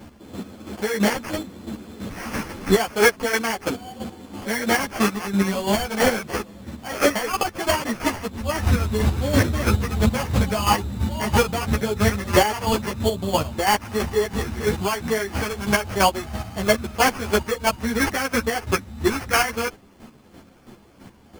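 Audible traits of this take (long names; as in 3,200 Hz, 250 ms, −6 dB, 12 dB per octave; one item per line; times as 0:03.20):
chopped level 3 Hz, depth 60%, duty 25%
aliases and images of a low sample rate 3,800 Hz, jitter 0%
a shimmering, thickened sound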